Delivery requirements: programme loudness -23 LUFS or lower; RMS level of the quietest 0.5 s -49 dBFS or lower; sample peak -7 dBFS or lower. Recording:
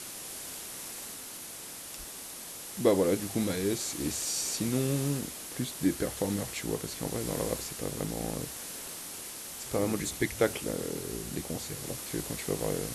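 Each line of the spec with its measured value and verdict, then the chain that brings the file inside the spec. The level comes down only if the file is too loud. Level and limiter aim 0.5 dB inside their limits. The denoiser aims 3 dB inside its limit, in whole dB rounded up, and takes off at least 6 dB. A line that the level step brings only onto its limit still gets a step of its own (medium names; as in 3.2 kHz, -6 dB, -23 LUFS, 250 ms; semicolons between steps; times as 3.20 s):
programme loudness -33.0 LUFS: pass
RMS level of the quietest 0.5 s -43 dBFS: fail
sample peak -12.0 dBFS: pass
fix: noise reduction 9 dB, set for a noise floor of -43 dBFS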